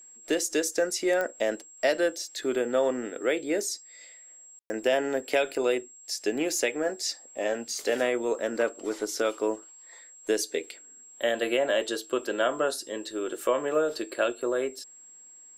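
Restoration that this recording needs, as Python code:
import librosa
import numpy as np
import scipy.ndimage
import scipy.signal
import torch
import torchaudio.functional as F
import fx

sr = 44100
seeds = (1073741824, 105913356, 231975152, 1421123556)

y = fx.fix_declick_ar(x, sr, threshold=10.0)
y = fx.notch(y, sr, hz=7600.0, q=30.0)
y = fx.fix_ambience(y, sr, seeds[0], print_start_s=15.05, print_end_s=15.55, start_s=4.59, end_s=4.7)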